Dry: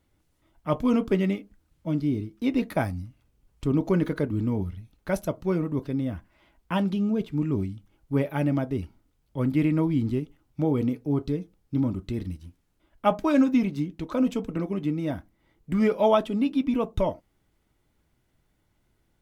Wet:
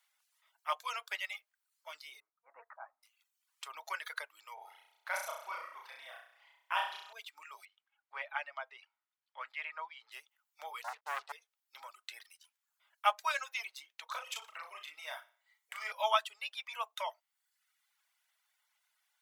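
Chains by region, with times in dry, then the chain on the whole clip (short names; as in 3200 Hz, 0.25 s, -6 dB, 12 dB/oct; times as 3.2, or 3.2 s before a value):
2.2–3.03 inverse Chebyshev low-pass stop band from 3200 Hz, stop band 50 dB + auto swell 0.167 s
4.54–7.13 high shelf 2800 Hz -8.5 dB + flutter echo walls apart 5.7 m, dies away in 1.2 s
7.65–10.12 LPF 2600 Hz + bell 270 Hz -5.5 dB 0.53 oct
10.84–11.32 expander -43 dBFS + LPF 1300 Hz + sample leveller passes 3
14.08–15.92 flutter echo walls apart 10.3 m, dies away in 0.46 s + compressor 2.5:1, threshold -24 dBFS + doubler 37 ms -4 dB
whole clip: reverb removal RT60 0.86 s; Bessel high-pass 1400 Hz, order 8; gain +3 dB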